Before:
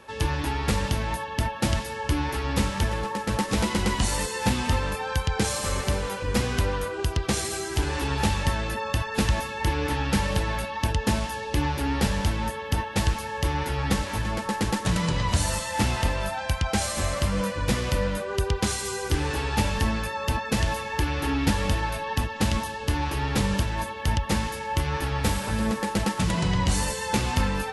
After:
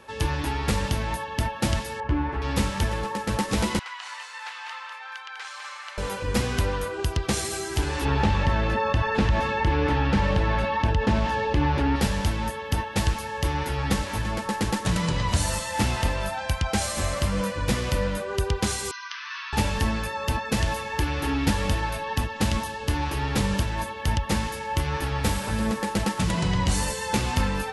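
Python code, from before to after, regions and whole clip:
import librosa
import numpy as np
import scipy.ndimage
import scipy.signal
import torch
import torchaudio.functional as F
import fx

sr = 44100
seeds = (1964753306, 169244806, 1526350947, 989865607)

y = fx.chain(x, sr, fx.lowpass(hz=1700.0, slope=12),
    fx.doubler(ms=17.0, db=-11.0), at=(2.0, 2.42))
y = fx.chain(y, sr, fx.highpass(hz=1100.0, slope=24),
    fx.spacing_loss(db_at_10k=25),
    fx.echo_single(ms=199, db=-5.5), at=(3.79, 5.98))
y = fx.chain(y, sr, fx.lowpass(hz=5200.0, slope=12),
    fx.high_shelf(hz=3200.0, db=-9.0),
    fx.env_flatten(amount_pct=50), at=(8.05, 11.96))
y = fx.chain(y, sr, fx.brickwall_bandpass(low_hz=920.0, high_hz=6300.0),
    fx.air_absorb(metres=90.0), at=(18.91, 19.53))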